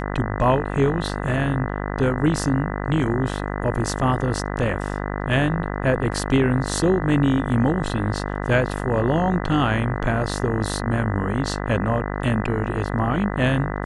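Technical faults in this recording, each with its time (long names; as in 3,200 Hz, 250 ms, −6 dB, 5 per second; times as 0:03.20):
mains buzz 50 Hz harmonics 40 −27 dBFS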